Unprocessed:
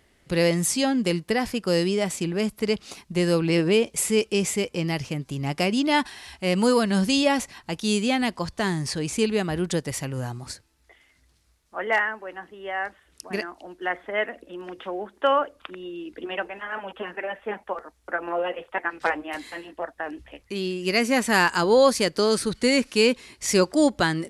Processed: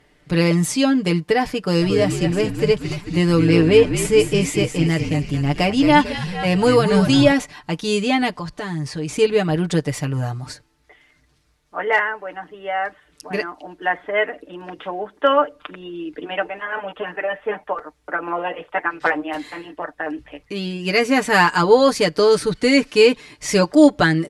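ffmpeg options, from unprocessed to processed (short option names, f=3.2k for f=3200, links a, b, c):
-filter_complex "[0:a]asplit=3[a][b][c];[a]afade=t=out:st=1.81:d=0.02[d];[b]asplit=7[e][f][g][h][i][j][k];[f]adelay=222,afreqshift=-60,volume=-8dB[l];[g]adelay=444,afreqshift=-120,volume=-13.5dB[m];[h]adelay=666,afreqshift=-180,volume=-19dB[n];[i]adelay=888,afreqshift=-240,volume=-24.5dB[o];[j]adelay=1110,afreqshift=-300,volume=-30.1dB[p];[k]adelay=1332,afreqshift=-360,volume=-35.6dB[q];[e][l][m][n][o][p][q]amix=inputs=7:normalize=0,afade=t=in:st=1.81:d=0.02,afade=t=out:st=7.31:d=0.02[r];[c]afade=t=in:st=7.31:d=0.02[s];[d][r][s]amix=inputs=3:normalize=0,asettb=1/sr,asplit=3[t][u][v];[t]atrim=end=8.394[w];[u]atrim=start=8.39:end=9.09,asetpts=PTS-STARTPTS,afade=t=in:d=0.004:c=qsin,afade=t=out:st=0.696:d=0.004:c=qsin,acompressor=threshold=-35dB:ratio=2:attack=3.2:release=140:knee=1:detection=peak[x];[v]atrim=start=9.086[y];[w][x]acrossfade=d=0.004:c1=hsin:c2=qsin[z];[z][y]acrossfade=d=0.004:c1=qsin:c2=hsin,aemphasis=mode=reproduction:type=cd,aecho=1:1:6.7:0.72,volume=4dB"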